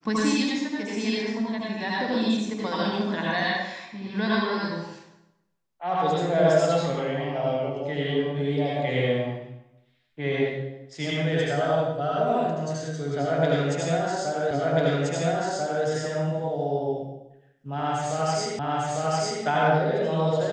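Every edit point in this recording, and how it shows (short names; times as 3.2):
14.51 repeat of the last 1.34 s
18.59 repeat of the last 0.85 s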